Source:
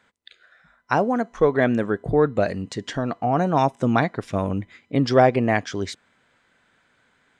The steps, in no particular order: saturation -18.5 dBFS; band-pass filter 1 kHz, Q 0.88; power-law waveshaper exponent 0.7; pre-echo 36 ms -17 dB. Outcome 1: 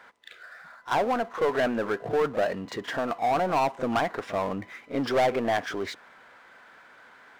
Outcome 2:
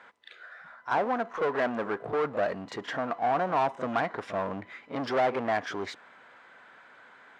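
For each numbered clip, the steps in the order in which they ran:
band-pass filter > saturation > pre-echo > power-law waveshaper; pre-echo > saturation > power-law waveshaper > band-pass filter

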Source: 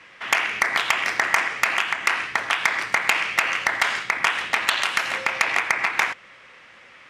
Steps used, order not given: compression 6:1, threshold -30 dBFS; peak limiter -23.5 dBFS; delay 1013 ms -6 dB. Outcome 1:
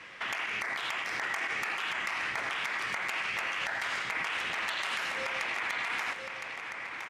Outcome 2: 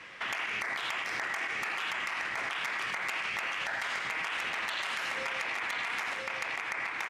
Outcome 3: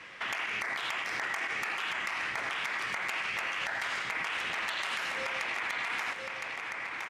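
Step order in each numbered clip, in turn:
peak limiter > compression > delay; delay > peak limiter > compression; peak limiter > delay > compression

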